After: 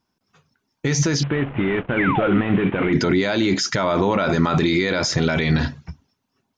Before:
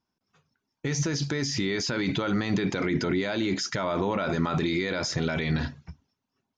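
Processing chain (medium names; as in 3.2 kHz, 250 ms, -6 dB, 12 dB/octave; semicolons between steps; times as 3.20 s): 1.23–2.93 s: CVSD coder 16 kbps; 1.97–2.41 s: painted sound fall 220–2400 Hz -31 dBFS; trim +8 dB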